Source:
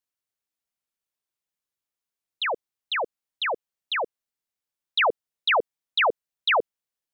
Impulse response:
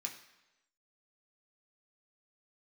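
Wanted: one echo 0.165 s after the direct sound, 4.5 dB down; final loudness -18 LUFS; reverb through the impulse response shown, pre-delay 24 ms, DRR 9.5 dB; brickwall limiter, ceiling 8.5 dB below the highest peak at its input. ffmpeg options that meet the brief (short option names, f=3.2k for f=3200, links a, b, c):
-filter_complex "[0:a]alimiter=level_in=1dB:limit=-24dB:level=0:latency=1,volume=-1dB,aecho=1:1:165:0.596,asplit=2[a][b];[1:a]atrim=start_sample=2205,adelay=24[c];[b][c]afir=irnorm=-1:irlink=0,volume=-8dB[d];[a][d]amix=inputs=2:normalize=0,volume=13dB"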